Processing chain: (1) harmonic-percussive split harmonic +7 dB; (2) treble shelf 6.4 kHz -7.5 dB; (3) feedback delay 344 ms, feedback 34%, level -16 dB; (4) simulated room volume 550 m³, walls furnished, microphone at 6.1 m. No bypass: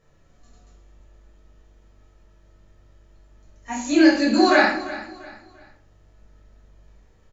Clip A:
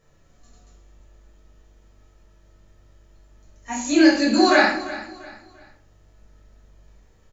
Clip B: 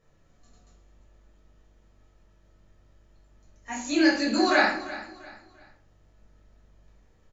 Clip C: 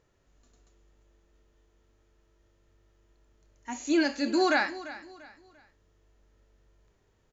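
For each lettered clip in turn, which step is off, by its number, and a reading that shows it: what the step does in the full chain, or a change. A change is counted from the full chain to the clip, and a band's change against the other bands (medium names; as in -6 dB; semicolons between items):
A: 2, 4 kHz band +2.0 dB; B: 1, 4 kHz band +3.0 dB; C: 4, crest factor change -2.0 dB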